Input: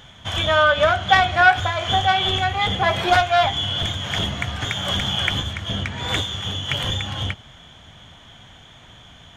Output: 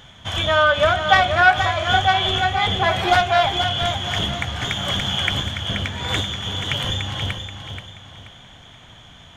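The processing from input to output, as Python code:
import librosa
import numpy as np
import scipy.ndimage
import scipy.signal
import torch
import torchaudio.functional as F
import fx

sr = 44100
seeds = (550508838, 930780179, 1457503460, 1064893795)

y = fx.echo_feedback(x, sr, ms=480, feedback_pct=33, wet_db=-8)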